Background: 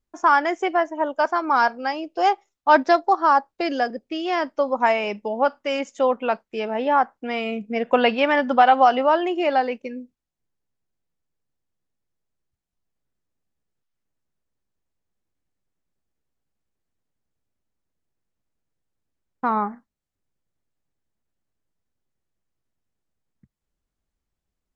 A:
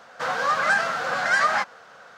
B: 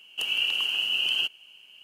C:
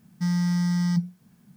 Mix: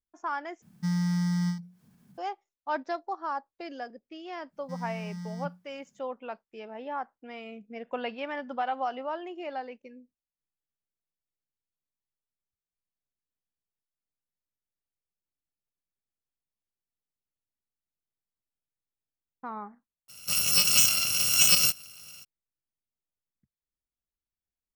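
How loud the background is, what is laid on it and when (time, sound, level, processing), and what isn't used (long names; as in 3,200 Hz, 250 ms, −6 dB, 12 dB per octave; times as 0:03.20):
background −16 dB
0:00.62: overwrite with C −3.5 dB + every ending faded ahead of time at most 130 dB per second
0:04.48: mix in C −14.5 dB, fades 0.10 s
0:20.08: mix in A, fades 0.02 s + samples in bit-reversed order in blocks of 128 samples
not used: B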